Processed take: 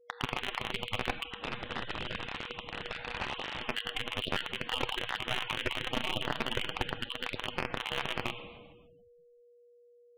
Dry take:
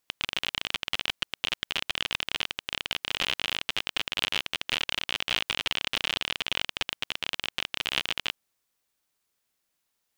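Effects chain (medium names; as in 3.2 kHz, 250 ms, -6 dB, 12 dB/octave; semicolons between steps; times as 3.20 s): random holes in the spectrogram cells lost 28%; waveshaping leveller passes 2; whistle 480 Hz -56 dBFS; gate -52 dBFS, range -7 dB; reverberation RT60 1.9 s, pre-delay 8 ms, DRR 8 dB; spectral gate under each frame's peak -15 dB strong; 1.30–3.68 s: integer overflow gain 18 dB; tape spacing loss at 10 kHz 42 dB; slew-rate limiter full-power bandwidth 81 Hz; trim +4 dB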